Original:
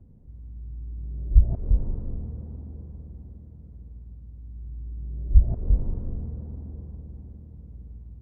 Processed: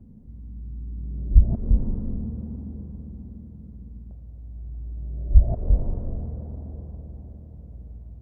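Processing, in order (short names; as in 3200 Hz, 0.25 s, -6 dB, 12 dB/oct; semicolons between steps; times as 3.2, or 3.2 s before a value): bell 220 Hz +10.5 dB 0.59 oct, from 4.11 s 640 Hz; gain +1.5 dB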